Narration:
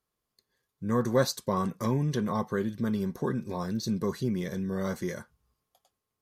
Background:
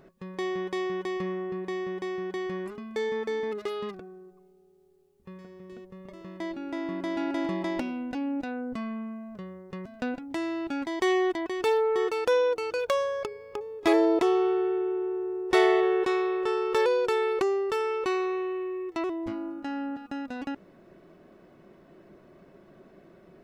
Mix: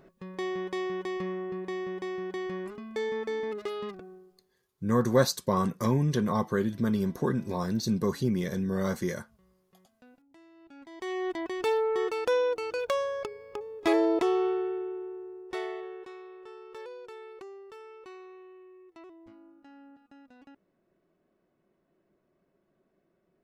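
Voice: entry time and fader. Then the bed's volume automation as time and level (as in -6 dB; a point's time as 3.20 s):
4.00 s, +2.0 dB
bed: 4.14 s -2 dB
4.75 s -25.5 dB
10.52 s -25.5 dB
11.40 s -2.5 dB
14.46 s -2.5 dB
16.13 s -19.5 dB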